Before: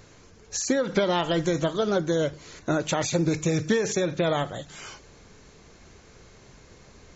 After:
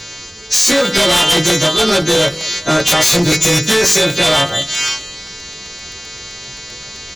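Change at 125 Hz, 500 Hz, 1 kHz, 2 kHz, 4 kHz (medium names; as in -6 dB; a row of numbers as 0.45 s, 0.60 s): +8.5 dB, +8.5 dB, +11.5 dB, +16.5 dB, +23.0 dB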